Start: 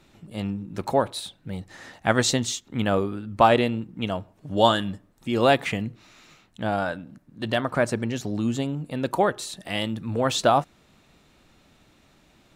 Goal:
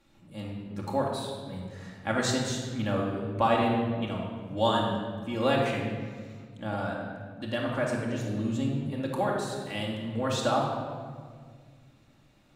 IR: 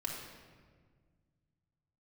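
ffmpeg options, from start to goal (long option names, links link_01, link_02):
-filter_complex "[1:a]atrim=start_sample=2205,asetrate=39690,aresample=44100[link_01];[0:a][link_01]afir=irnorm=-1:irlink=0,volume=-8dB"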